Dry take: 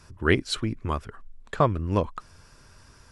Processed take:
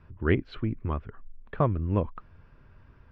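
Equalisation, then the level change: LPF 2900 Hz 24 dB/oct; low shelf 450 Hz +8 dB; -7.5 dB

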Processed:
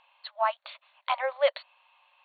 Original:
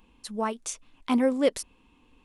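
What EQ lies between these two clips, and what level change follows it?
brick-wall FIR band-pass 540–4500 Hz; air absorption 96 m; +5.0 dB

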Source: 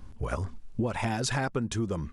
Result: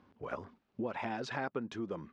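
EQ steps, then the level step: HPF 250 Hz 12 dB/oct; air absorption 230 m; -4.5 dB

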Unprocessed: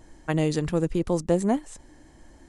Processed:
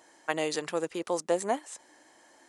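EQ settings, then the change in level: HPF 590 Hz 12 dB/oct; +1.5 dB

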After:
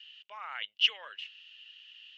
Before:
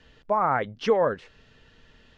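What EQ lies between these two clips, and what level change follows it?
resonant high-pass 2900 Hz, resonance Q 12; air absorption 63 m; -3.0 dB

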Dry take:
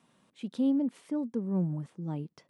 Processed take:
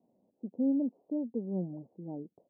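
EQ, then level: steep low-pass 760 Hz 48 dB/oct; bell 64 Hz -8.5 dB 2.3 oct; bell 150 Hz -9 dB 0.39 oct; 0.0 dB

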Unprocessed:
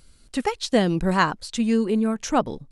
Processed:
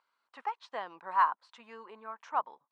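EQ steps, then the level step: ladder band-pass 1100 Hz, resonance 65%; 0.0 dB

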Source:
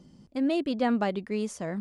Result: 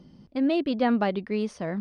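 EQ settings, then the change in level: polynomial smoothing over 15 samples; +2.5 dB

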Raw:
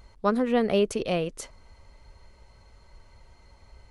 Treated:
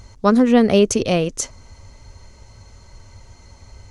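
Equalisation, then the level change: fifteen-band EQ 100 Hz +10 dB, 250 Hz +5 dB, 6300 Hz +12 dB; +7.0 dB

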